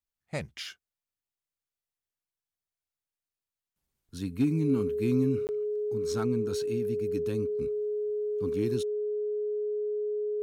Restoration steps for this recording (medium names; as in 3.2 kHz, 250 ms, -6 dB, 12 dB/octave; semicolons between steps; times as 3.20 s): band-stop 420 Hz, Q 30; interpolate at 5.47 s, 19 ms